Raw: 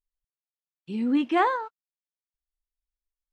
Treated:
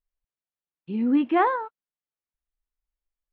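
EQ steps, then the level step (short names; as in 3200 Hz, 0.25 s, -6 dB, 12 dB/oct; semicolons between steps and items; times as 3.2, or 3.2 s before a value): air absorption 400 m; +3.0 dB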